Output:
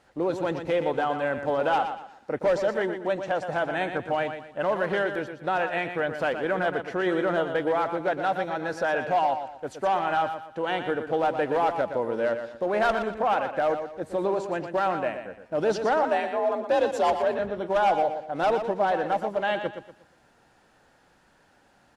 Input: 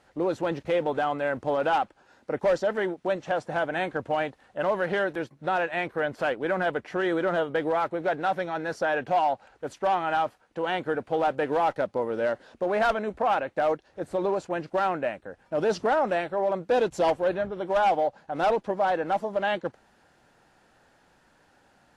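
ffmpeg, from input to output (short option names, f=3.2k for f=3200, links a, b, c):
-filter_complex "[0:a]asettb=1/sr,asplit=3[a][b][c];[a]atrim=end=16.034[d];[b]atrim=start=16.03:end=17.39,asetpts=PTS-STARTPTS,afade=t=in:d=0.004:c=qsin,afade=t=out:st=1.356:d=0.004:c=qsin,afreqshift=54[e];[c]atrim=start=17.386[f];[d][e]acrossfade=d=0.004:c1=hsin:c2=qsin[g];[g][f]acrossfade=d=0.004:c1=qsin:c2=hsin,asplit=2[h][i];[i]aecho=0:1:119|238|357|476:0.376|0.124|0.0409|0.0135[j];[h][j]amix=inputs=2:normalize=0"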